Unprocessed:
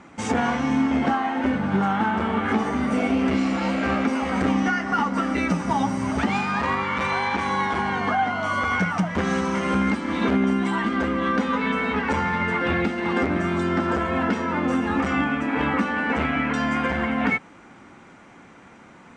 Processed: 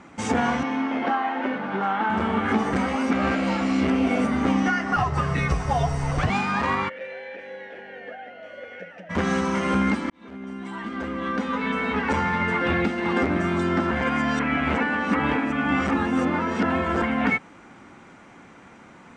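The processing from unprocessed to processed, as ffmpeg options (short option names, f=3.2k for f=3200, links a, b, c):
-filter_complex "[0:a]asettb=1/sr,asplit=3[a][b][c];[a]atrim=end=0.634[d];[b]atrim=start=0.63:end=2.1,asetpts=PTS-STARTPTS,afade=t=in:d=0.004:c=qsin,afade=t=out:st=1.466:d=0.004:c=qsin,highpass=330,lowpass=3.8k[e];[c]atrim=start=2.096[f];[d][e]acrossfade=d=0.004:c1=hsin:c2=qsin[g];[g][f]acrossfade=d=0.004:c1=qsin:c2=hsin,asettb=1/sr,asplit=3[h][i][j];[h]atrim=end=4.964[k];[i]atrim=start=4.96:end=6.3,asetpts=PTS-STARTPTS,afade=t=in:d=0.004:c=qsin,afade=t=out:st=1.336:d=0.004:c=qsin,afreqshift=-120[l];[j]atrim=start=6.296[m];[k][l]acrossfade=d=0.004:c1=hsin:c2=qsin[n];[n][m]acrossfade=d=0.004:c1=qsin:c2=hsin,asplit=3[o][p][q];[o]afade=t=out:st=6.88:d=0.02[r];[p]asplit=3[s][t][u];[s]bandpass=f=530:t=q:w=8,volume=0dB[v];[t]bandpass=f=1.84k:t=q:w=8,volume=-6dB[w];[u]bandpass=f=2.48k:t=q:w=8,volume=-9dB[x];[v][w][x]amix=inputs=3:normalize=0,afade=t=in:st=6.88:d=0.02,afade=t=out:st=9.09:d=0.02[y];[q]afade=t=in:st=9.09:d=0.02[z];[r][y][z]amix=inputs=3:normalize=0,asplit=6[aa][ab][ac][ad][ae][af];[aa]atrim=end=2.732[ag];[ab]atrim=start=2.728:end=4.452,asetpts=PTS-STARTPTS,areverse[ah];[ac]atrim=start=4.448:end=10.1,asetpts=PTS-STARTPTS,afade=t=out:st=5.648:d=0.004:c=hsin[ai];[ad]atrim=start=10.1:end=13.912,asetpts=PTS-STARTPTS,afade=t=in:d=2.04[aj];[ae]atrim=start=13.908:end=17.022,asetpts=PTS-STARTPTS,areverse[ak];[af]atrim=start=17.018[al];[ag][ah]acrossfade=d=0.004:c1=hsin:c2=hsin[am];[ai][aj]concat=n=2:v=0:a=1[an];[am][an]acrossfade=d=0.004:c1=hsin:c2=hsin[ao];[ao][ak]acrossfade=d=0.004:c1=hsin:c2=hsin[ap];[ap][al]acrossfade=d=0.004:c1=hsin:c2=hsin"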